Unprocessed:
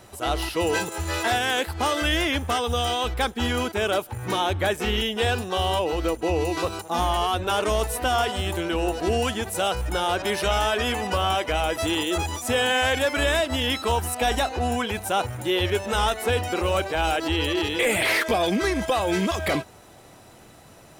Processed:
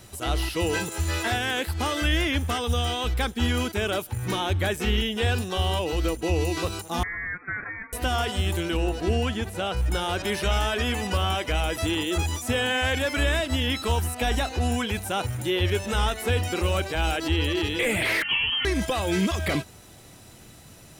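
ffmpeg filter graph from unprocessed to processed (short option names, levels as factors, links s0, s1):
-filter_complex "[0:a]asettb=1/sr,asplit=3[s0][s1][s2];[s0]atrim=end=7.034[s3];[s1]atrim=start=7.03:end=7.93,asetpts=PTS-STARTPTS,afade=t=in:d=0.004:c=qsin,afade=t=out:st=0.896:d=0.004:c=qsin,highpass=f=1100:w=0.5412,highpass=f=1100:w=1.3066,lowpass=f=2500:t=q:w=0.5098,lowpass=f=2500:t=q:w=0.6013,lowpass=f=2500:t=q:w=0.9,lowpass=f=2500:t=q:w=2.563,afreqshift=-2900[s4];[s2]atrim=start=7.926[s5];[s3][s4]acrossfade=d=0.004:c1=hsin:c2=qsin[s6];[s6][s5]acrossfade=d=0.004:c1=qsin:c2=hsin,asettb=1/sr,asplit=3[s7][s8][s9];[s7]atrim=end=8.774[s10];[s8]atrim=start=8.77:end=9.92,asetpts=PTS-STARTPTS,afade=t=in:d=0.004:c=qsin,afade=t=out:st=1.146:d=0.004:c=qsin,acrossover=split=3900[s11][s12];[s12]acompressor=threshold=0.01:ratio=4:attack=1:release=60[s13];[s11][s13]amix=inputs=2:normalize=0,highshelf=f=3700:g=-7.5[s14];[s9]atrim=start=9.916[s15];[s10][s14]acrossfade=d=0.004:c1=hsin:c2=qsin[s16];[s16][s15]acrossfade=d=0.004:c1=qsin:c2=hsin,asettb=1/sr,asplit=3[s17][s18][s19];[s17]atrim=end=18.224[s20];[s18]atrim=start=18.22:end=18.65,asetpts=PTS-STARTPTS,afade=t=in:d=0.004:c=qsin,afade=t=out:st=0.426:d=0.004:c=qsin,asplit=2[s21][s22];[s22]adelay=27,volume=0.224[s23];[s21][s23]amix=inputs=2:normalize=0,atrim=end_sample=18963,lowpass=f=2900:t=q:w=0.5098,lowpass=f=2900:t=q:w=0.6013,lowpass=f=2900:t=q:w=0.9,lowpass=f=2900:t=q:w=2.563,afreqshift=-3400[s24];[s19]atrim=start=18.646[s25];[s20][s24]acrossfade=d=0.004:c1=hsin:c2=qsin[s26];[s26][s25]acrossfade=d=0.004:c1=qsin:c2=hsin,acrossover=split=2700[s27][s28];[s28]acompressor=threshold=0.0158:ratio=4:attack=1:release=60[s29];[s27][s29]amix=inputs=2:normalize=0,equalizer=f=770:w=0.46:g=-10,volume=1.68"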